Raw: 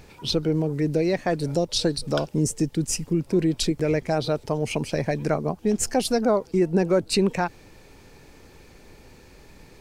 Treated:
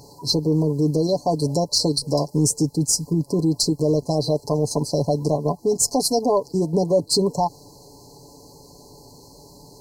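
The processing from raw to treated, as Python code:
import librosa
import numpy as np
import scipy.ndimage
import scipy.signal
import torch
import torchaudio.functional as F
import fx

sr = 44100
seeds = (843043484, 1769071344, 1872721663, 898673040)

p1 = scipy.signal.sosfilt(scipy.signal.butter(2, 52.0, 'highpass', fs=sr, output='sos'), x)
p2 = fx.tilt_shelf(p1, sr, db=-3.0, hz=800.0)
p3 = p2 + 0.63 * np.pad(p2, (int(7.0 * sr / 1000.0), 0))[:len(p2)]
p4 = fx.level_steps(p3, sr, step_db=13)
p5 = p3 + F.gain(torch.from_numpy(p4), -0.5).numpy()
p6 = 10.0 ** (-6.5 / 20.0) * np.tanh(p5 / 10.0 ** (-6.5 / 20.0))
y = fx.brickwall_bandstop(p6, sr, low_hz=1100.0, high_hz=4000.0)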